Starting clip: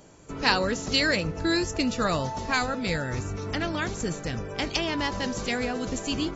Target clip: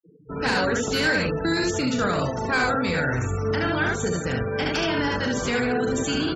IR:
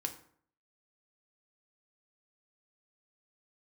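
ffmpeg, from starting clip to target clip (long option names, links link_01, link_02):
-filter_complex "[0:a]aecho=1:1:39|73:0.422|0.708,asplit=2[link_01][link_02];[1:a]atrim=start_sample=2205,asetrate=66150,aresample=44100[link_03];[link_02][link_03]afir=irnorm=-1:irlink=0,volume=-0.5dB[link_04];[link_01][link_04]amix=inputs=2:normalize=0,asplit=2[link_05][link_06];[link_06]asetrate=22050,aresample=44100,atempo=2,volume=-10dB[link_07];[link_05][link_07]amix=inputs=2:normalize=0,highpass=frequency=100:poles=1,acrossover=split=500[link_08][link_09];[link_09]asoftclip=type=tanh:threshold=-21dB[link_10];[link_08][link_10]amix=inputs=2:normalize=0,afftfilt=real='re*gte(hypot(re,im),0.0224)':imag='im*gte(hypot(re,im),0.0224)':win_size=1024:overlap=0.75,alimiter=limit=-16dB:level=0:latency=1:release=21,equalizer=frequency=1500:width=5.6:gain=8.5"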